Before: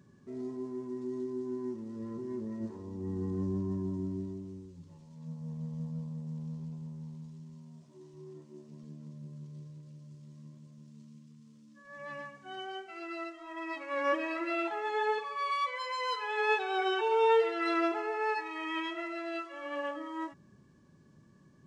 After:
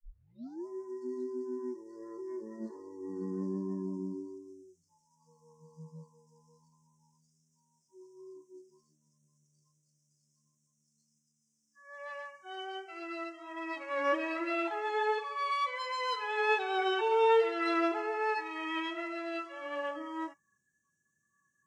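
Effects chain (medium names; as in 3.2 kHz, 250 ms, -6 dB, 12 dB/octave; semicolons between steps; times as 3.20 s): tape start-up on the opening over 0.67 s; spectral noise reduction 28 dB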